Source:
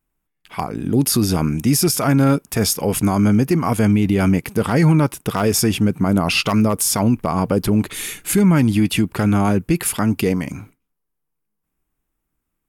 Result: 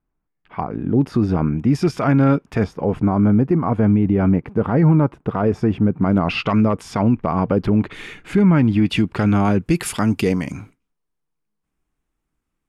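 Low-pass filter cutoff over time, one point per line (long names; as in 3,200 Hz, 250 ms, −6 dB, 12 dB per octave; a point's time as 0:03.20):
1,500 Hz
from 0:01.75 2,500 Hz
from 0:02.64 1,200 Hz
from 0:06.03 2,300 Hz
from 0:08.86 4,300 Hz
from 0:09.66 7,700 Hz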